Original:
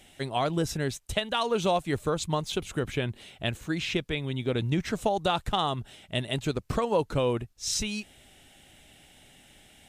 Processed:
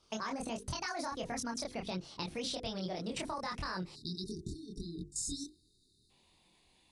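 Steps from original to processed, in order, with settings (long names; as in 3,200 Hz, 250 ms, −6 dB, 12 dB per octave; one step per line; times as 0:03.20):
gliding playback speed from 163% → 123%
downsampling to 22,050 Hz
output level in coarse steps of 18 dB
mains-hum notches 50/100/150/200/250/300/350/400/450/500 Hz
multi-voice chorus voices 2, 1.5 Hz, delay 25 ms, depth 3 ms
downward compressor, threshold −41 dBFS, peak gain reduction 7 dB
time-frequency box erased 0:03.95–0:06.10, 450–3,600 Hz
level +6 dB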